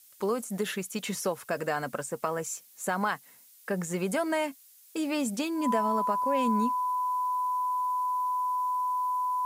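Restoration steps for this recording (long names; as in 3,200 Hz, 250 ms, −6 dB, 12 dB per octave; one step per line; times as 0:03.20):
notch filter 1,000 Hz, Q 30
broadband denoise 20 dB, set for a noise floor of −56 dBFS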